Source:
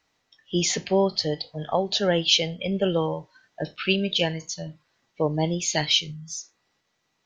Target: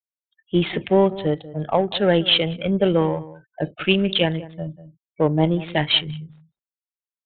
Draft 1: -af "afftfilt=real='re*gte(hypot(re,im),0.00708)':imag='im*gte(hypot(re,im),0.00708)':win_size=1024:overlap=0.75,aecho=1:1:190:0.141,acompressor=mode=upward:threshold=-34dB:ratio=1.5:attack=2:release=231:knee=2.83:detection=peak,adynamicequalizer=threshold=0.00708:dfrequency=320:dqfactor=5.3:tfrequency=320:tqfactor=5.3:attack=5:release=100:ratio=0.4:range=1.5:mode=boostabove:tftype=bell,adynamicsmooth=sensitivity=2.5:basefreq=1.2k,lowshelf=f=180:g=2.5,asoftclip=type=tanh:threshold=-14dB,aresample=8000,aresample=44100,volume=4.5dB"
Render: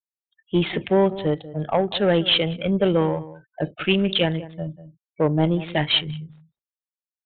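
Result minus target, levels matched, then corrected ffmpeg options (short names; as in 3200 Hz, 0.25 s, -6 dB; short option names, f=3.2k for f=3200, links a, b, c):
soft clip: distortion +14 dB
-af "afftfilt=real='re*gte(hypot(re,im),0.00708)':imag='im*gte(hypot(re,im),0.00708)':win_size=1024:overlap=0.75,aecho=1:1:190:0.141,acompressor=mode=upward:threshold=-34dB:ratio=1.5:attack=2:release=231:knee=2.83:detection=peak,adynamicequalizer=threshold=0.00708:dfrequency=320:dqfactor=5.3:tfrequency=320:tqfactor=5.3:attack=5:release=100:ratio=0.4:range=1.5:mode=boostabove:tftype=bell,adynamicsmooth=sensitivity=2.5:basefreq=1.2k,lowshelf=f=180:g=2.5,asoftclip=type=tanh:threshold=-5.5dB,aresample=8000,aresample=44100,volume=4.5dB"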